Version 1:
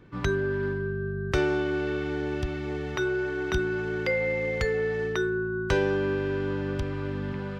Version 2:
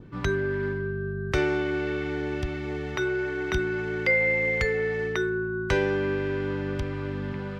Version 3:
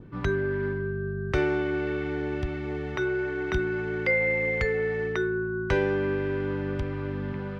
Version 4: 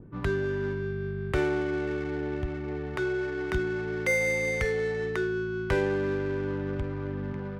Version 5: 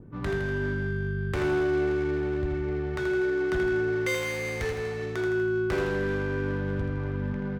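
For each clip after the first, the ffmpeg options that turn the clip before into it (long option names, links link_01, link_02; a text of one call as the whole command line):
ffmpeg -i in.wav -filter_complex "[0:a]adynamicequalizer=threshold=0.00316:dfrequency=2100:dqfactor=4:tfrequency=2100:tqfactor=4:attack=5:release=100:ratio=0.375:range=4:mode=boostabove:tftype=bell,acrossover=split=400[link_01][link_02];[link_01]acompressor=mode=upward:threshold=-40dB:ratio=2.5[link_03];[link_03][link_02]amix=inputs=2:normalize=0" out.wav
ffmpeg -i in.wav -af "highshelf=frequency=4000:gain=-11" out.wav
ffmpeg -i in.wav -af "adynamicsmooth=sensitivity=6:basefreq=1200,volume=-1.5dB" out.wav
ffmpeg -i in.wav -af "asoftclip=type=hard:threshold=-25.5dB,aecho=1:1:81|162|243|324|405|486|567:0.531|0.287|0.155|0.0836|0.0451|0.0244|0.0132" out.wav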